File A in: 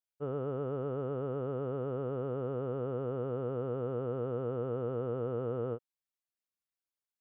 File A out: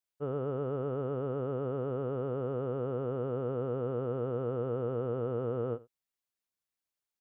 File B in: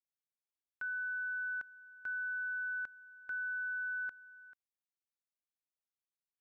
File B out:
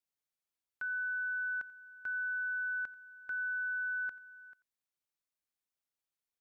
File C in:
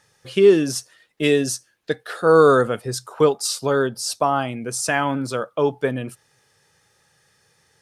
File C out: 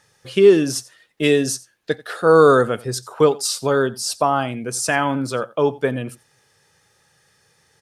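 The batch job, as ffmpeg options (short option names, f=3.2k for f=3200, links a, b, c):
-af "aecho=1:1:88:0.0891,volume=1.5dB"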